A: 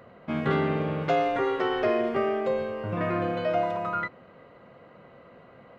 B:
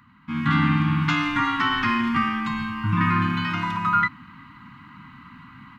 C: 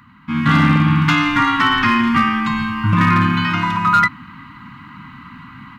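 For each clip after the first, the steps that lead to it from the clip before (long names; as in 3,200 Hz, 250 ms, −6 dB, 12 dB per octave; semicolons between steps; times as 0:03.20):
elliptic band-stop filter 280–960 Hz, stop band 40 dB; automatic gain control gain up to 11 dB
hard clipping −14.5 dBFS, distortion −22 dB; level +7.5 dB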